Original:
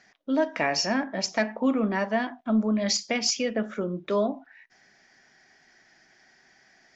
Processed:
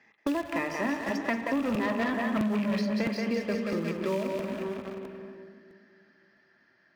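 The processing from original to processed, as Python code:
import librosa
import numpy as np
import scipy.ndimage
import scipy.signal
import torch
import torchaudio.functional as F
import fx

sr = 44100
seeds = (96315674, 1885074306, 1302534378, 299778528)

p1 = fx.rattle_buzz(x, sr, strikes_db=-30.0, level_db=-22.0)
p2 = fx.doppler_pass(p1, sr, speed_mps=23, closest_m=9.6, pass_at_s=2.25)
p3 = scipy.signal.sosfilt(scipy.signal.butter(2, 2800.0, 'lowpass', fs=sr, output='sos'), p2)
p4 = np.where(np.abs(p3) >= 10.0 ** (-37.5 / 20.0), p3, 0.0)
p5 = p3 + (p4 * 10.0 ** (-12.0 / 20.0))
p6 = fx.hum_notches(p5, sr, base_hz=50, count=4)
p7 = fx.notch_comb(p6, sr, f0_hz=730.0)
p8 = fx.echo_split(p7, sr, split_hz=380.0, low_ms=262, high_ms=179, feedback_pct=52, wet_db=-6.5)
p9 = fx.leveller(p8, sr, passes=3)
p10 = scipy.signal.sosfilt(scipy.signal.butter(2, 51.0, 'highpass', fs=sr, output='sos'), p9)
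p11 = fx.rev_spring(p10, sr, rt60_s=1.3, pass_ms=(47, 57), chirp_ms=70, drr_db=11.0)
p12 = fx.buffer_crackle(p11, sr, first_s=0.42, period_s=0.66, block=256, kind='repeat')
p13 = fx.band_squash(p12, sr, depth_pct=100)
y = p13 * 10.0 ** (-9.0 / 20.0)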